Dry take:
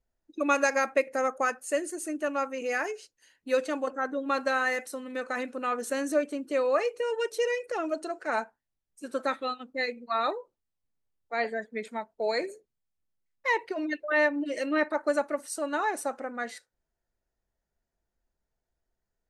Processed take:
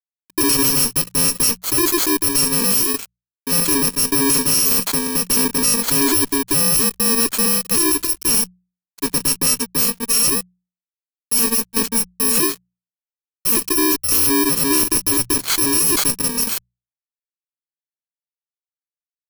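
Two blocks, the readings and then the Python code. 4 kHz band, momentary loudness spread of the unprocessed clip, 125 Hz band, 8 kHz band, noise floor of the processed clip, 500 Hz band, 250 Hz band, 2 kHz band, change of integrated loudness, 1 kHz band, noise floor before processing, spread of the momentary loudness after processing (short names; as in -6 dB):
+21.5 dB, 10 LU, n/a, +27.5 dB, under -85 dBFS, +1.5 dB, +12.5 dB, +3.0 dB, +14.5 dB, +3.0 dB, -85 dBFS, 6 LU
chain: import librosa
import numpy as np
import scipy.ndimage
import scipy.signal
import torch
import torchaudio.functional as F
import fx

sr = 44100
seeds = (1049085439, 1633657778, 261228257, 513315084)

y = fx.bit_reversed(x, sr, seeds[0], block=64)
y = fx.notch(y, sr, hz=2800.0, q=7.3)
y = fx.tremolo_shape(y, sr, shape='saw_down', hz=1.7, depth_pct=65)
y = fx.fuzz(y, sr, gain_db=42.0, gate_db=-49.0)
y = fx.hum_notches(y, sr, base_hz=60, count=3)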